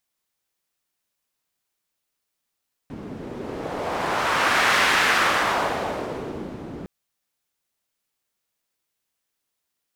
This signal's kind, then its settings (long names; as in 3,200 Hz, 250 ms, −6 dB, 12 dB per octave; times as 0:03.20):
wind from filtered noise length 3.96 s, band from 250 Hz, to 1,700 Hz, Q 1.2, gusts 1, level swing 17 dB